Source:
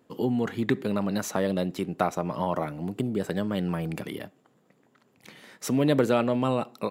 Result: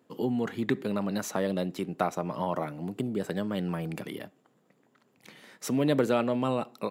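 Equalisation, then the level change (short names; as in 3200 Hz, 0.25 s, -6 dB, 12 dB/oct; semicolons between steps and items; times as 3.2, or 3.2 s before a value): HPF 110 Hz; -2.5 dB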